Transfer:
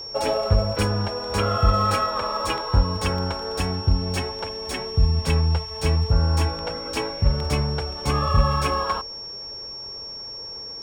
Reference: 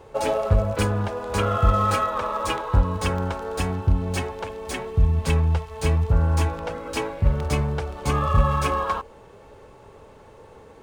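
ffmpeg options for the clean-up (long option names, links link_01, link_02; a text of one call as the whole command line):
ffmpeg -i in.wav -af "bandreject=frequency=5500:width=30" out.wav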